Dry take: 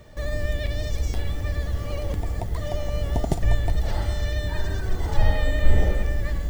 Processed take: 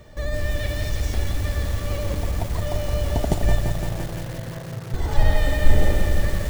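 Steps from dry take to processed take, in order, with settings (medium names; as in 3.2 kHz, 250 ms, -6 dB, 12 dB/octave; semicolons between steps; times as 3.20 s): 3.60–4.94 s: vocoder on a held chord minor triad, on A2; bit-crushed delay 170 ms, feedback 80%, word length 6-bit, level -6 dB; trim +1.5 dB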